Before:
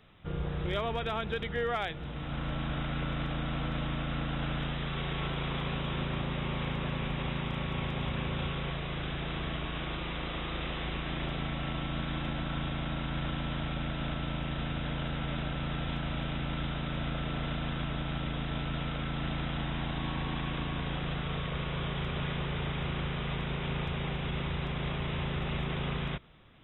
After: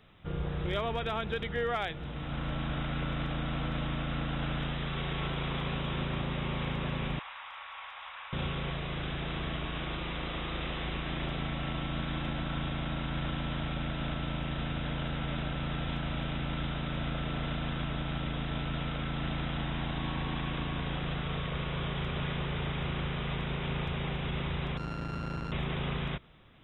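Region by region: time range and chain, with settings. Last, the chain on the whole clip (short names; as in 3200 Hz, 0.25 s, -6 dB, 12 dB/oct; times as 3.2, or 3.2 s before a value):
7.19–8.33 inverse Chebyshev high-pass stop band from 370 Hz, stop band 50 dB + tilt -4 dB/oct
24.77–25.52 sample sorter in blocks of 32 samples + LPF 2900 Hz + core saturation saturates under 240 Hz
whole clip: dry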